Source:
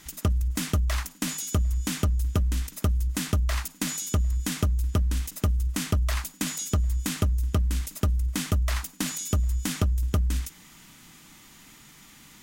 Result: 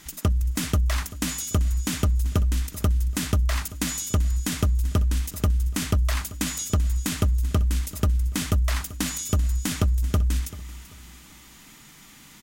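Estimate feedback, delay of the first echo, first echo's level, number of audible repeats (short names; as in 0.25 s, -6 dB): 34%, 0.387 s, -17.0 dB, 2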